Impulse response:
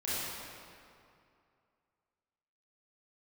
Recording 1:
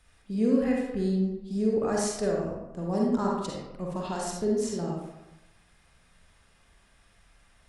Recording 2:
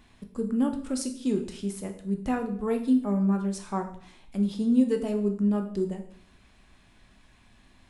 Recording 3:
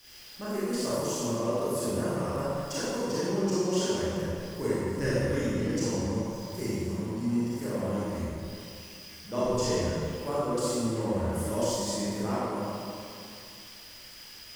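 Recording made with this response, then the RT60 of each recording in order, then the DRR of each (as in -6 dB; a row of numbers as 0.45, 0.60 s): 3; 0.95, 0.55, 2.5 s; -2.5, 5.0, -11.0 dB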